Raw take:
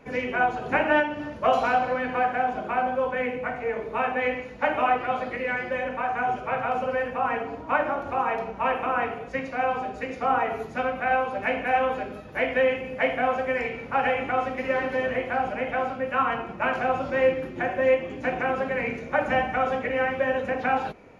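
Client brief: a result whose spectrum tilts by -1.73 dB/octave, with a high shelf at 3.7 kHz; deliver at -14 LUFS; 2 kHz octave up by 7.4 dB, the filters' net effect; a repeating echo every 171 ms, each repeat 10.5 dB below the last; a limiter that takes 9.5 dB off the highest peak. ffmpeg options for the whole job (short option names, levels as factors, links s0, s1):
-af "equalizer=f=2000:t=o:g=8,highshelf=f=3700:g=6,alimiter=limit=0.224:level=0:latency=1,aecho=1:1:171|342|513:0.299|0.0896|0.0269,volume=2.99"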